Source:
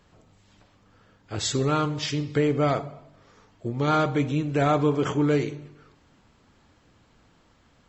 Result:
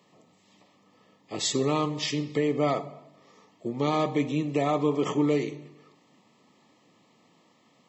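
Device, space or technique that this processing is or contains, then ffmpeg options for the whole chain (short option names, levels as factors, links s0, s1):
PA system with an anti-feedback notch: -af "highpass=f=160:w=0.5412,highpass=f=160:w=1.3066,asuperstop=centerf=1500:order=20:qfactor=3.8,alimiter=limit=0.188:level=0:latency=1:release=328"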